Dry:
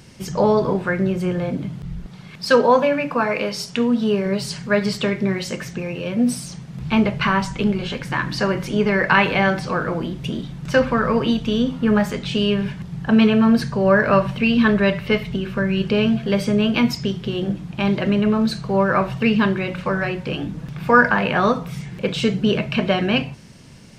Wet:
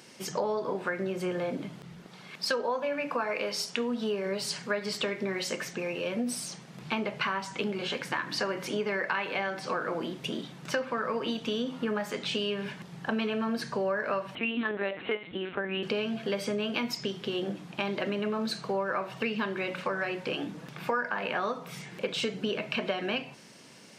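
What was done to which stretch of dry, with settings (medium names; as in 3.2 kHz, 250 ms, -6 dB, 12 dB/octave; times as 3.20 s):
14.35–15.83 s: LPC vocoder at 8 kHz pitch kept
whole clip: high-pass 320 Hz 12 dB/octave; compression, threshold -25 dBFS; trim -2.5 dB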